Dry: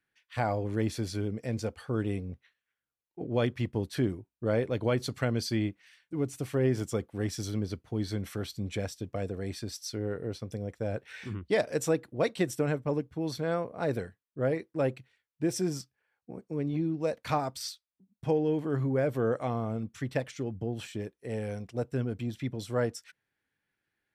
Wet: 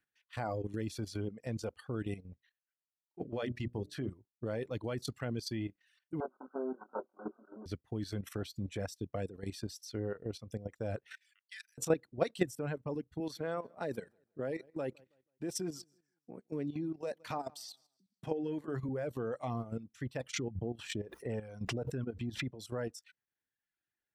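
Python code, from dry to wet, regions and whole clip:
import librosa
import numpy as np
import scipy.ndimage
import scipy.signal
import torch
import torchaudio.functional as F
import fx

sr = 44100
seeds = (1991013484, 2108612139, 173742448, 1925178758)

y = fx.chain(x, sr, fx.high_shelf(hz=9300.0, db=-9.0),
    fx.hum_notches(base_hz=60, count=10), at=(3.24, 4.11))
y = fx.chain(y, sr, fx.lower_of_two(delay_ms=5.4),
    fx.brickwall_bandpass(low_hz=220.0, high_hz=1600.0),
    fx.doubler(ms=23.0, db=-3.0), at=(6.2, 7.66))
y = fx.chain(y, sr, fx.steep_highpass(hz=1600.0, slope=48),
    fx.high_shelf(hz=9200.0, db=7.5),
    fx.level_steps(step_db=20), at=(11.15, 11.78))
y = fx.chain(y, sr, fx.highpass(hz=170.0, slope=12),
    fx.echo_feedback(ms=162, feedback_pct=31, wet_db=-19.5), at=(13.2, 18.89))
y = fx.chain(y, sr, fx.lowpass(hz=4000.0, slope=6),
    fx.pre_swell(db_per_s=38.0), at=(20.33, 22.52))
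y = fx.notch(y, sr, hz=2200.0, q=19.0)
y = fx.dereverb_blind(y, sr, rt60_s=0.89)
y = fx.level_steps(y, sr, step_db=12)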